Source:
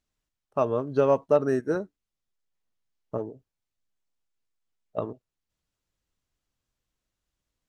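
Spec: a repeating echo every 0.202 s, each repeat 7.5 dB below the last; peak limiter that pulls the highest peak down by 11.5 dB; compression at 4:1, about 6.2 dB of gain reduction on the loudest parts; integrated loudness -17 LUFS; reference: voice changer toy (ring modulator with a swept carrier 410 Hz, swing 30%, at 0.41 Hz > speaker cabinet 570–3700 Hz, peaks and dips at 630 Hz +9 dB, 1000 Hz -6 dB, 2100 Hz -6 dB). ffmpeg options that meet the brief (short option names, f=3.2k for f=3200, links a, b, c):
-af "acompressor=threshold=-23dB:ratio=4,alimiter=limit=-24dB:level=0:latency=1,aecho=1:1:202|404|606|808|1010:0.422|0.177|0.0744|0.0312|0.0131,aeval=exprs='val(0)*sin(2*PI*410*n/s+410*0.3/0.41*sin(2*PI*0.41*n/s))':c=same,highpass=570,equalizer=f=630:t=q:w=4:g=9,equalizer=f=1k:t=q:w=4:g=-6,equalizer=f=2.1k:t=q:w=4:g=-6,lowpass=f=3.7k:w=0.5412,lowpass=f=3.7k:w=1.3066,volume=24.5dB"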